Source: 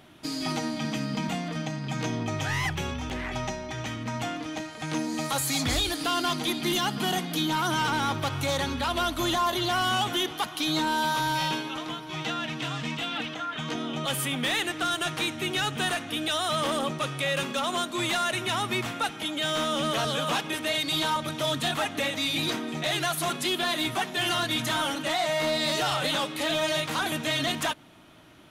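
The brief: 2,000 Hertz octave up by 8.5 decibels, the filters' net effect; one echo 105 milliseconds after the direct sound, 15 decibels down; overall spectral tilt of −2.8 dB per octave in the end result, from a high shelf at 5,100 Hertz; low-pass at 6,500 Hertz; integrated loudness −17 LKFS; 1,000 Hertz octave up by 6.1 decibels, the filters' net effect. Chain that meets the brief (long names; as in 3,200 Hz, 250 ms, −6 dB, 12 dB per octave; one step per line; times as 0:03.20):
low-pass filter 6,500 Hz
parametric band 1,000 Hz +5 dB
parametric band 2,000 Hz +8.5 dB
high-shelf EQ 5,100 Hz +5.5 dB
single-tap delay 105 ms −15 dB
level +5.5 dB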